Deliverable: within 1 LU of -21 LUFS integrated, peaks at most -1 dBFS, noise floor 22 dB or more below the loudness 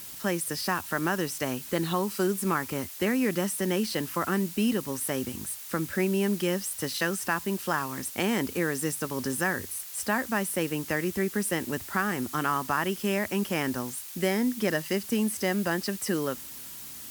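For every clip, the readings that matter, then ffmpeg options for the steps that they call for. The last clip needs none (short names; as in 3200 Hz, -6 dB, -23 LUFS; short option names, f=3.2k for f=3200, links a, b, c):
noise floor -42 dBFS; noise floor target -51 dBFS; loudness -29.0 LUFS; peak -12.0 dBFS; loudness target -21.0 LUFS
-> -af "afftdn=nr=9:nf=-42"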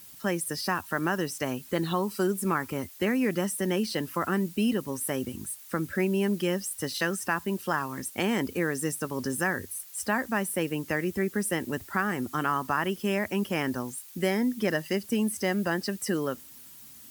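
noise floor -49 dBFS; noise floor target -51 dBFS
-> -af "afftdn=nr=6:nf=-49"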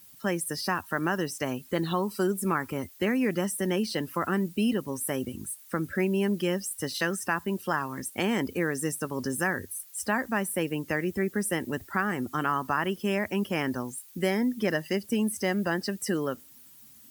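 noise floor -52 dBFS; loudness -29.5 LUFS; peak -12.5 dBFS; loudness target -21.0 LUFS
-> -af "volume=8.5dB"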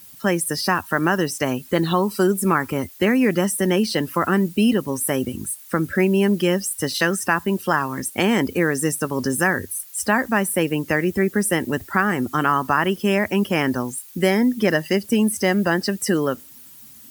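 loudness -21.0 LUFS; peak -4.0 dBFS; noise floor -44 dBFS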